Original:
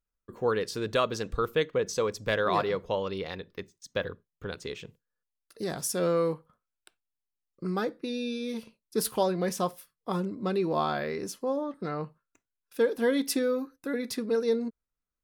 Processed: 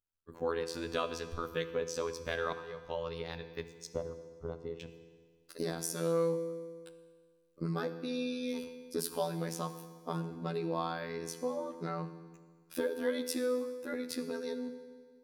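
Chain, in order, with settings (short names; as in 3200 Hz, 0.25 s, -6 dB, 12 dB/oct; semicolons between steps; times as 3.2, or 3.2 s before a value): recorder AGC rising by 9.4 dB/s; robotiser 83.4 Hz; 2.53–3.01 fade in; 3.87–4.8 polynomial smoothing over 65 samples; FDN reverb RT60 1.7 s, low-frequency decay 1×, high-frequency decay 0.9×, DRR 9 dB; gain -5.5 dB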